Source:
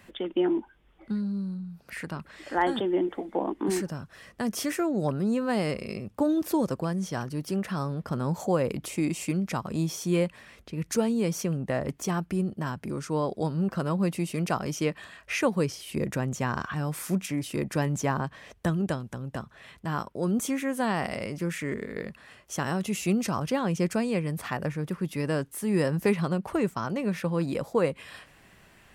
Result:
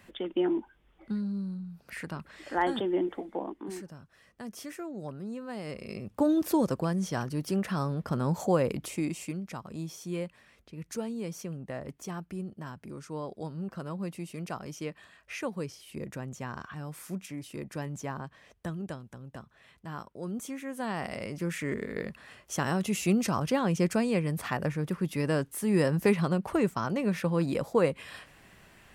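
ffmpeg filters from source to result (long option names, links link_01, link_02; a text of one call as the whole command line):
ffmpeg -i in.wav -af "volume=19dB,afade=type=out:start_time=3.11:duration=0.54:silence=0.334965,afade=type=in:start_time=5.62:duration=0.64:silence=0.251189,afade=type=out:start_time=8.57:duration=0.85:silence=0.334965,afade=type=in:start_time=20.62:duration=1.26:silence=0.334965" out.wav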